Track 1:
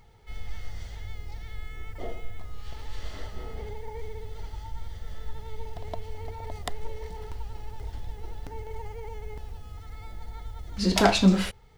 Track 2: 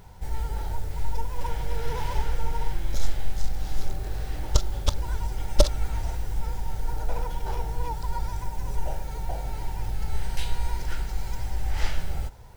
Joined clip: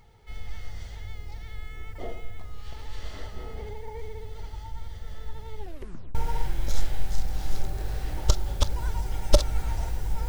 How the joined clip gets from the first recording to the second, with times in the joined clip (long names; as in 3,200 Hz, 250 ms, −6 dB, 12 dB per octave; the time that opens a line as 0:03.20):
track 1
0:05.57: tape stop 0.58 s
0:06.15: continue with track 2 from 0:02.41